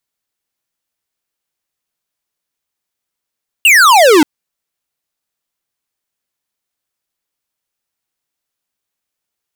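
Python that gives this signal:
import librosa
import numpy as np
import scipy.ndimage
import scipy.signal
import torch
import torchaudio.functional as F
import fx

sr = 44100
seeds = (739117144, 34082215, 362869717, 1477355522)

y = fx.laser_zap(sr, level_db=-6.0, start_hz=2900.0, end_hz=280.0, length_s=0.58, wave='square')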